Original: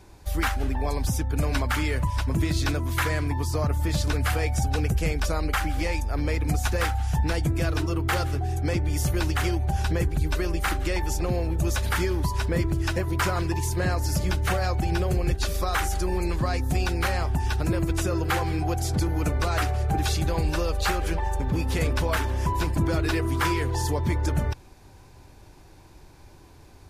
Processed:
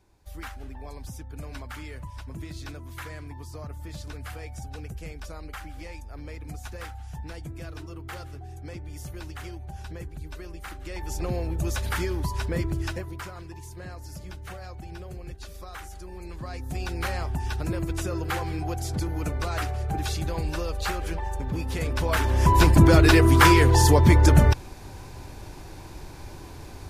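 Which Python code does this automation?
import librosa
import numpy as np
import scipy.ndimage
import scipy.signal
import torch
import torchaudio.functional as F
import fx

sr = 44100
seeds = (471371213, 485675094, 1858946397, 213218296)

y = fx.gain(x, sr, db=fx.line((10.77, -13.5), (11.23, -3.0), (12.82, -3.0), (13.3, -15.0), (16.11, -15.0), (17.05, -4.0), (21.85, -4.0), (22.61, 9.0)))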